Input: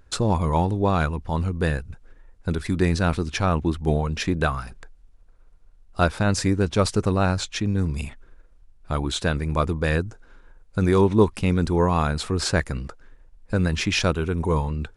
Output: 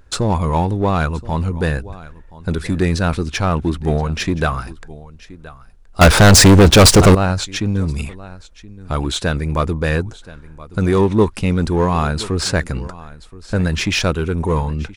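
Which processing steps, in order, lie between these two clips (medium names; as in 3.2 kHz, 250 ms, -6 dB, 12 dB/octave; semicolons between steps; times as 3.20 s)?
delay 1024 ms -20.5 dB; in parallel at -6 dB: hard clipper -23 dBFS, distortion -6 dB; 6.01–7.15 s: on the sum: waveshaping leveller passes 5; trim +2 dB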